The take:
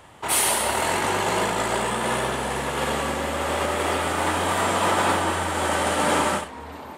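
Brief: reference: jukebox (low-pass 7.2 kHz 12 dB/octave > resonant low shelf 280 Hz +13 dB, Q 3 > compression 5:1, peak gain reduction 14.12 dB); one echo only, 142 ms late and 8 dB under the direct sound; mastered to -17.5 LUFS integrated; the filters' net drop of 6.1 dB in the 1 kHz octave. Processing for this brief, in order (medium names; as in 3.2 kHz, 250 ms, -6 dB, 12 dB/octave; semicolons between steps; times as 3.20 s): low-pass 7.2 kHz 12 dB/octave; resonant low shelf 280 Hz +13 dB, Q 3; peaking EQ 1 kHz -6 dB; delay 142 ms -8 dB; compression 5:1, threshold -25 dBFS; trim +10.5 dB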